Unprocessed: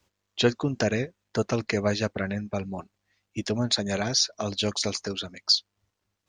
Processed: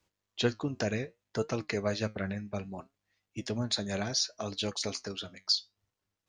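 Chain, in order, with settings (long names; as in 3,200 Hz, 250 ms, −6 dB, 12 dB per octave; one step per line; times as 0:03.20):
flanger 0.64 Hz, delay 5.9 ms, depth 4.9 ms, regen +75%
level −2 dB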